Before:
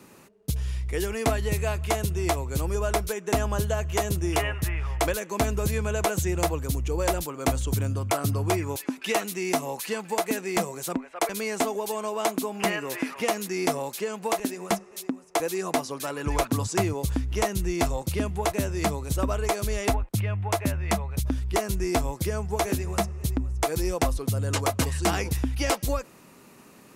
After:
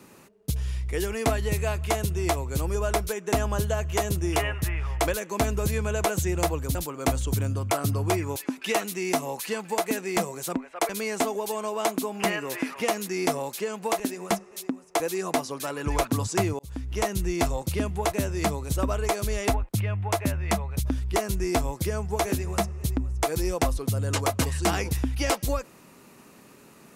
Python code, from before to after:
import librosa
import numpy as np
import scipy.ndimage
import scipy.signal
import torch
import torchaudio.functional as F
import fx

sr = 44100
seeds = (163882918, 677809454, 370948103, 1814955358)

y = fx.edit(x, sr, fx.cut(start_s=6.75, length_s=0.4),
    fx.fade_in_span(start_s=16.99, length_s=0.65, curve='qsin'), tone=tone)